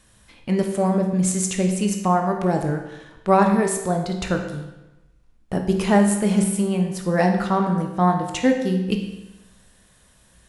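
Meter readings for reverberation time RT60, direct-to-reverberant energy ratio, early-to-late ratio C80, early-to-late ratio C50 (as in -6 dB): 1.0 s, 3.0 dB, 8.5 dB, 6.0 dB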